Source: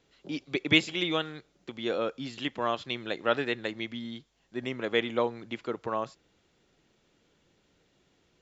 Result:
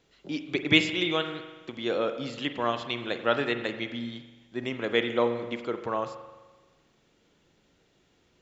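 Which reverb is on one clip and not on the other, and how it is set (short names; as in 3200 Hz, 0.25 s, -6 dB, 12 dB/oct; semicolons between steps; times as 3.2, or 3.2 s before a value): spring tank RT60 1.3 s, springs 42 ms, chirp 60 ms, DRR 8 dB; gain +1.5 dB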